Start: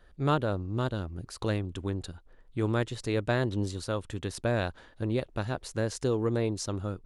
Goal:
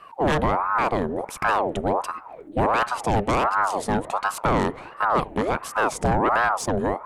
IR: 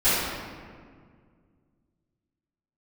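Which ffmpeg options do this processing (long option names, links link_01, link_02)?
-filter_complex "[0:a]asplit=2[link_01][link_02];[1:a]atrim=start_sample=2205,lowpass=2300[link_03];[link_02][link_03]afir=irnorm=-1:irlink=0,volume=-39.5dB[link_04];[link_01][link_04]amix=inputs=2:normalize=0,aeval=exprs='0.224*sin(PI/2*3.16*val(0)/0.224)':channel_layout=same,equalizer=frequency=4600:width_type=o:width=0.94:gain=-10.5,aeval=exprs='val(0)*sin(2*PI*740*n/s+740*0.6/1.4*sin(2*PI*1.4*n/s))':channel_layout=same"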